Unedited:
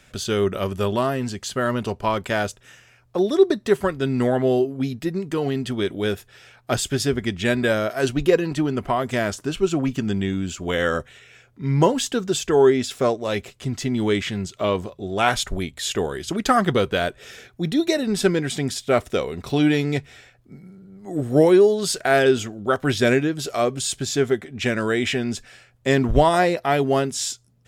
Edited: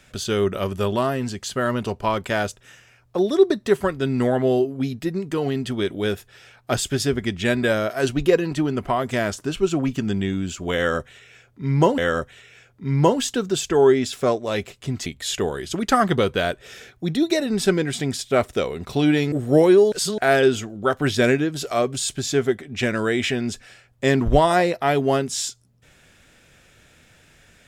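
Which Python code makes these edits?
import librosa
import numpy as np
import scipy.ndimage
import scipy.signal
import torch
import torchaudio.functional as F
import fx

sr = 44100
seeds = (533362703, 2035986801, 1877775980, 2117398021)

y = fx.edit(x, sr, fx.repeat(start_s=10.76, length_s=1.22, count=2),
    fx.cut(start_s=13.84, length_s=1.79),
    fx.cut(start_s=19.89, length_s=1.26),
    fx.reverse_span(start_s=21.75, length_s=0.26), tone=tone)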